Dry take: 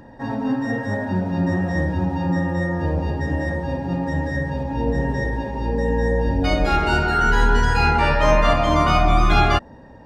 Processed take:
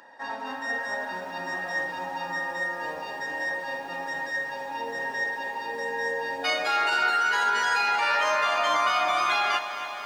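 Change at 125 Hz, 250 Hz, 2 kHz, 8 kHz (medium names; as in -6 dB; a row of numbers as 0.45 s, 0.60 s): -33.5 dB, -22.0 dB, -0.5 dB, -0.5 dB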